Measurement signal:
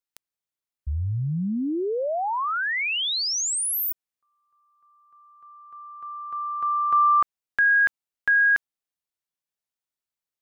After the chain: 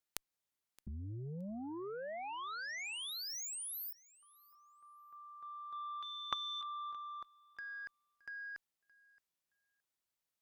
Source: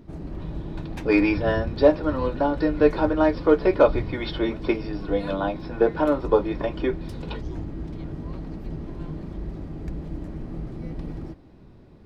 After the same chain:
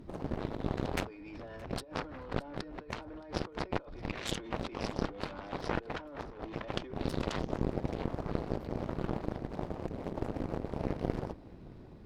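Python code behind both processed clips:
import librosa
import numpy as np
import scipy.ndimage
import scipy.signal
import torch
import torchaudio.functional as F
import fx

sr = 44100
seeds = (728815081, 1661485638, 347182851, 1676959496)

y = fx.over_compress(x, sr, threshold_db=-32.0, ratio=-1.0)
y = fx.cheby_harmonics(y, sr, harmonics=(7,), levels_db=(-14,), full_scale_db=-11.5)
y = fx.echo_feedback(y, sr, ms=620, feedback_pct=16, wet_db=-23.0)
y = y * 10.0 ** (1.0 / 20.0)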